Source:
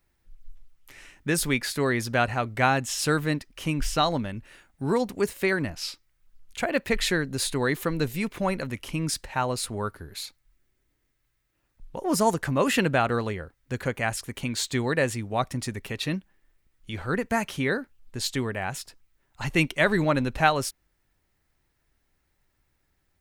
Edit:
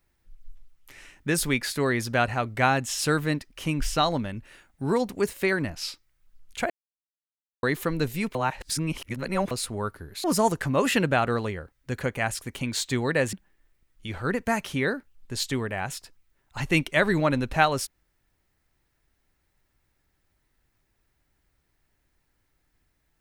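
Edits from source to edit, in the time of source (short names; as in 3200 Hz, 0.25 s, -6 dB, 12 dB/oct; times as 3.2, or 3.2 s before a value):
6.7–7.63 mute
8.35–9.51 reverse
10.24–12.06 cut
15.15–16.17 cut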